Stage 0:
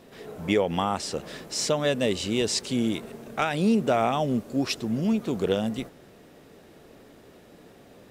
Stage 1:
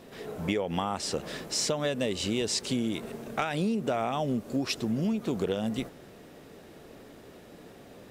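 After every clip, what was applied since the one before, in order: compressor 6:1, threshold -27 dBFS, peak gain reduction 9.5 dB; gain +1.5 dB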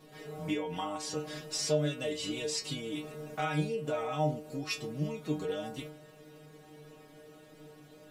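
metallic resonator 150 Hz, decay 0.34 s, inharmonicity 0.002; gain +7.5 dB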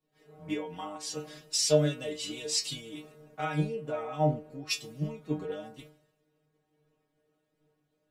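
three-band expander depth 100%; gain -2 dB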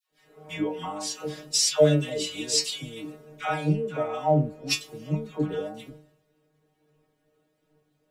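dispersion lows, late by 0.111 s, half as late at 810 Hz; gain +5.5 dB

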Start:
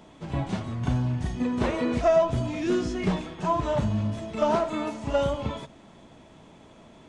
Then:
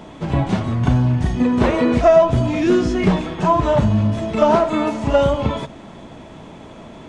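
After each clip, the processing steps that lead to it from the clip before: high shelf 3900 Hz -6 dB; in parallel at -1 dB: compressor, threshold -32 dBFS, peak gain reduction 14.5 dB; on the sum: gain +7.5 dB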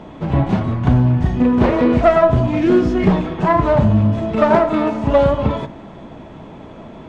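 self-modulated delay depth 0.18 ms; LPF 1800 Hz 6 dB/oct; de-hum 59.13 Hz, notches 39; gain +3 dB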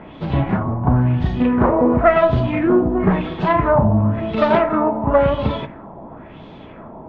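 LFO low-pass sine 0.96 Hz 840–4100 Hz; gain -2.5 dB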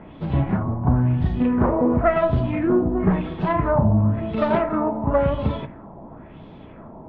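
LPF 3800 Hz 6 dB/oct; low shelf 240 Hz +6 dB; notches 60/120 Hz; gain -6 dB

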